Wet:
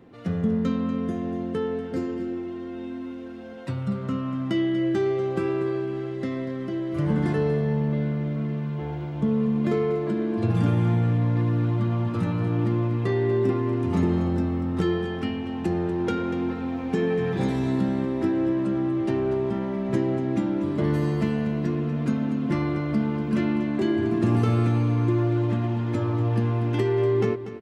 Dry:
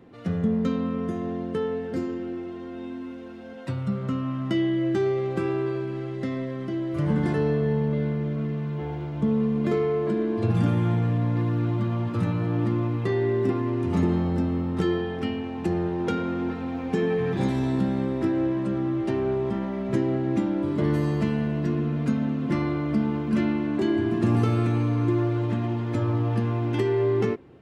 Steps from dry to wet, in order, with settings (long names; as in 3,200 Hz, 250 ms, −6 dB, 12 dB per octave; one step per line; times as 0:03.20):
single-tap delay 240 ms −12 dB